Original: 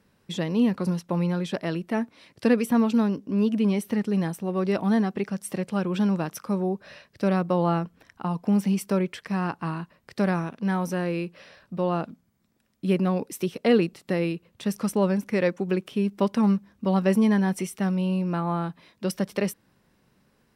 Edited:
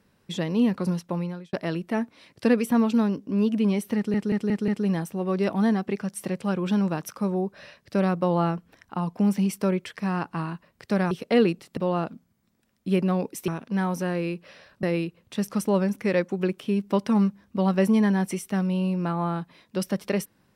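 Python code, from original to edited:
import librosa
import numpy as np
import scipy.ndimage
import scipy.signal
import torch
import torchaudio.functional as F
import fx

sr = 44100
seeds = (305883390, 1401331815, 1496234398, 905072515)

y = fx.edit(x, sr, fx.fade_out_span(start_s=1.02, length_s=0.51),
    fx.stutter(start_s=3.96, slice_s=0.18, count=5),
    fx.swap(start_s=10.39, length_s=1.35, other_s=13.45, other_length_s=0.66), tone=tone)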